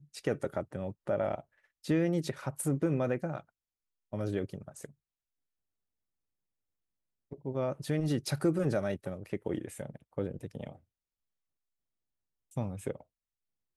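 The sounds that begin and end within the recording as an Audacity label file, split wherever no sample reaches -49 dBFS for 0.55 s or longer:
4.130000	4.900000	sound
7.310000	10.760000	sound
12.510000	13.010000	sound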